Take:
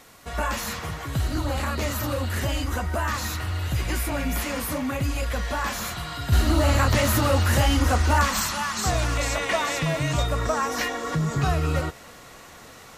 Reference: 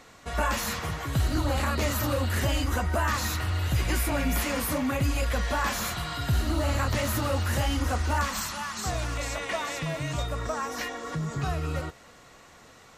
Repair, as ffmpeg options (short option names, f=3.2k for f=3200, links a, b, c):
-af "agate=range=-21dB:threshold=-33dB,asetnsamples=n=441:p=0,asendcmd='6.32 volume volume -6.5dB',volume=0dB"